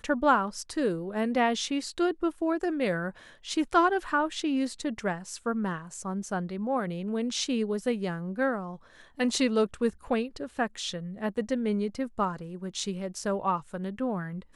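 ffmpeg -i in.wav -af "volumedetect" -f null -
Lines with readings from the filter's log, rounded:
mean_volume: -29.5 dB
max_volume: -10.0 dB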